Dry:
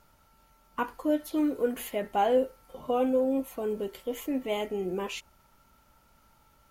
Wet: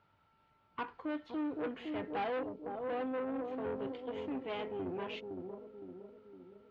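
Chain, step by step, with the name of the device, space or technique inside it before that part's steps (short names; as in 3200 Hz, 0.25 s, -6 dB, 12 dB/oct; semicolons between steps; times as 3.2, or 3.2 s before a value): 2.39–3.47 bell 1600 Hz -12.5 dB 0.78 oct; analogue delay pedal into a guitar amplifier (analogue delay 0.512 s, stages 2048, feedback 53%, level -5.5 dB; tube stage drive 28 dB, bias 0.6; speaker cabinet 100–3600 Hz, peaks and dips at 100 Hz +5 dB, 230 Hz -4 dB, 580 Hz -4 dB); gain -3.5 dB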